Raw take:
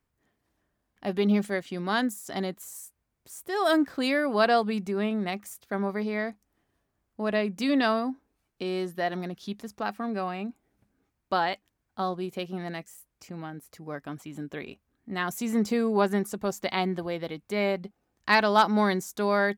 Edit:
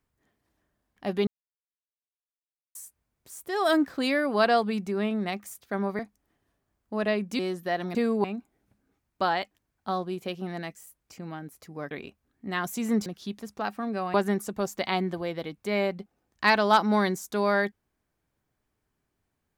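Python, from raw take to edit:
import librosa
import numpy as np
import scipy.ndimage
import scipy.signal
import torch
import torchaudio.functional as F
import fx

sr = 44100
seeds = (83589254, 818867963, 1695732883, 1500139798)

y = fx.edit(x, sr, fx.silence(start_s=1.27, length_s=1.48),
    fx.cut(start_s=5.99, length_s=0.27),
    fx.cut(start_s=7.66, length_s=1.05),
    fx.swap(start_s=9.27, length_s=1.08, other_s=15.7, other_length_s=0.29),
    fx.cut(start_s=14.02, length_s=0.53), tone=tone)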